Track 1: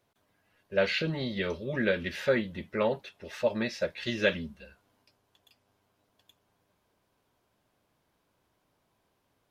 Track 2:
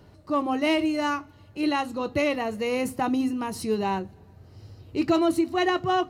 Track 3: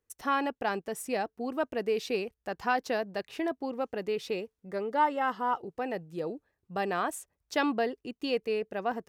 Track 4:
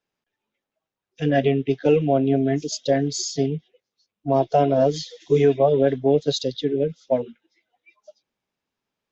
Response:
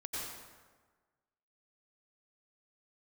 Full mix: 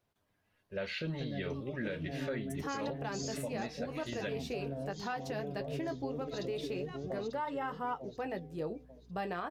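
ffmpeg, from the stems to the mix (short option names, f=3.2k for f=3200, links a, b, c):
-filter_complex "[0:a]volume=-7.5dB[a];[1:a]acrossover=split=500[b][c];[b]aeval=exprs='val(0)*(1-1/2+1/2*cos(2*PI*3.4*n/s))':c=same[d];[c]aeval=exprs='val(0)*(1-1/2-1/2*cos(2*PI*3.4*n/s))':c=same[e];[d][e]amix=inputs=2:normalize=0,adelay=1200,volume=-11.5dB[f];[2:a]bandreject=f=254.4:t=h:w=4,bandreject=f=508.8:t=h:w=4,bandreject=f=763.2:t=h:w=4,aeval=exprs='val(0)+0.000891*(sin(2*PI*60*n/s)+sin(2*PI*2*60*n/s)/2+sin(2*PI*3*60*n/s)/3+sin(2*PI*4*60*n/s)/4+sin(2*PI*5*60*n/s)/5)':c=same,flanger=delay=9.5:depth=7.2:regen=-44:speed=0.36:shape=sinusoidal,adelay=2400,volume=-0.5dB[g];[3:a]acrossover=split=300[h][i];[i]acompressor=threshold=-26dB:ratio=3[j];[h][j]amix=inputs=2:normalize=0,volume=-5dB,asplit=2[k][l];[l]volume=-17.5dB[m];[f][k]amix=inputs=2:normalize=0,flanger=delay=9.8:depth=4.5:regen=86:speed=1.8:shape=sinusoidal,acompressor=threshold=-38dB:ratio=6,volume=0dB[n];[m]aecho=0:1:893|1786|2679|3572:1|0.31|0.0961|0.0298[o];[a][g][n][o]amix=inputs=4:normalize=0,lowshelf=f=130:g=7.5,alimiter=level_in=4dB:limit=-24dB:level=0:latency=1:release=160,volume=-4dB"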